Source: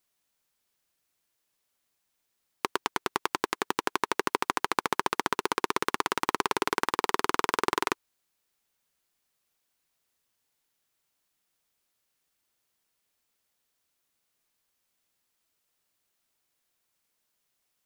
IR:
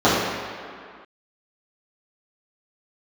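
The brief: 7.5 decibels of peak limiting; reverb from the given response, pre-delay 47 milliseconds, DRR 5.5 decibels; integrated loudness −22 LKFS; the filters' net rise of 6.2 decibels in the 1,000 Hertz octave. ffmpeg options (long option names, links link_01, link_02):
-filter_complex "[0:a]equalizer=frequency=1000:width_type=o:gain=7,alimiter=limit=-11dB:level=0:latency=1,asplit=2[link_01][link_02];[1:a]atrim=start_sample=2205,adelay=47[link_03];[link_02][link_03]afir=irnorm=-1:irlink=0,volume=-31dB[link_04];[link_01][link_04]amix=inputs=2:normalize=0,volume=8dB"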